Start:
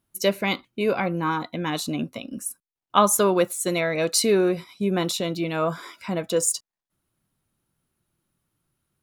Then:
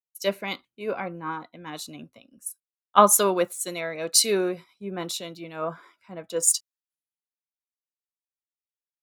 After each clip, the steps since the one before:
low-shelf EQ 260 Hz −7.5 dB
multiband upward and downward expander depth 100%
level −5 dB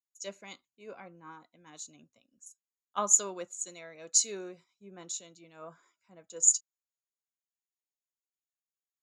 transistor ladder low-pass 7,000 Hz, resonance 90%
level −3.5 dB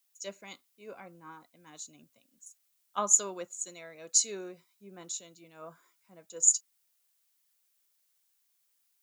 background noise blue −74 dBFS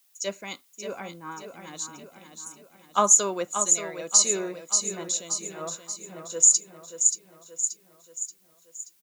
on a send: repeating echo 580 ms, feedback 51%, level −8.5 dB
on the sum: boost into a limiter +14.5 dB
level −4.5 dB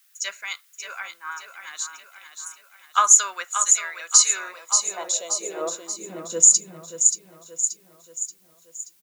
high-pass filter sweep 1,500 Hz → 69 Hz, 0:04.29–0:07.48
level +3.5 dB

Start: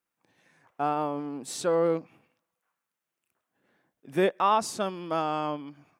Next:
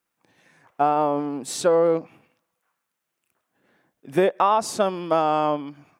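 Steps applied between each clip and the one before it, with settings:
dynamic equaliser 650 Hz, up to +6 dB, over −38 dBFS, Q 0.88
downward compressor 5 to 1, threshold −21 dBFS, peak gain reduction 7 dB
level +6 dB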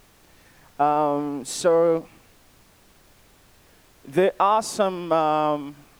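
background noise pink −55 dBFS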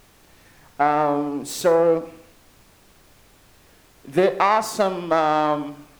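phase distortion by the signal itself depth 0.12 ms
on a send at −12 dB: convolution reverb RT60 0.65 s, pre-delay 27 ms
on the sum: level +1.5 dB

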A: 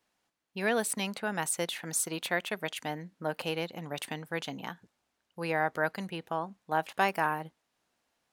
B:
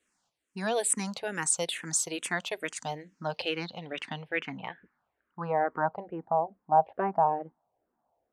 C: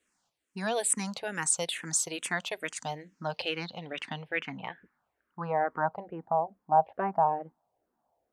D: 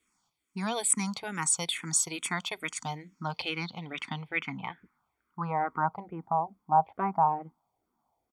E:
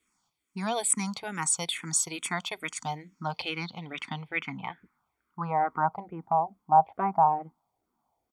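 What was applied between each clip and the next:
low-pass filter sweep 8,300 Hz → 760 Hz, 0:02.72–0:06.11; frequency shifter mixed with the dry sound −2.3 Hz; level +2.5 dB
dynamic equaliser 370 Hz, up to −4 dB, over −42 dBFS, Q 1.6
comb filter 0.9 ms, depth 64%
dynamic equaliser 710 Hz, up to +5 dB, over −42 dBFS, Q 2.6

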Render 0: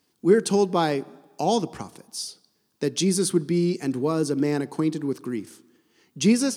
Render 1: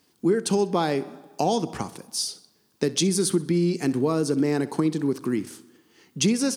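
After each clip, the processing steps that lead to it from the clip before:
downward compressor 5 to 1, threshold −24 dBFS, peak gain reduction 11.5 dB
repeating echo 64 ms, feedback 41%, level −18.5 dB
level +5 dB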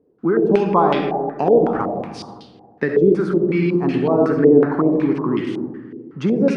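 on a send at −2 dB: convolution reverb RT60 1.6 s, pre-delay 25 ms
on the sum: low-pass on a step sequencer 5.4 Hz 460–3,100 Hz
level +2 dB

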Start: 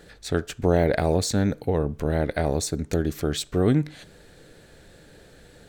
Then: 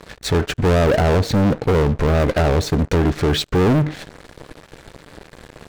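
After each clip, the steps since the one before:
treble cut that deepens with the level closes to 1,200 Hz, closed at −16 dBFS
high-shelf EQ 3,200 Hz −8.5 dB
leveller curve on the samples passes 5
level −2 dB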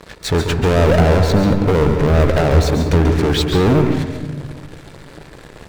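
convolution reverb RT60 1.3 s, pre-delay 136 ms, DRR 4.5 dB
level +1 dB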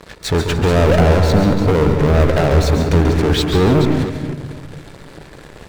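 delay that plays each chunk backwards 241 ms, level −10 dB

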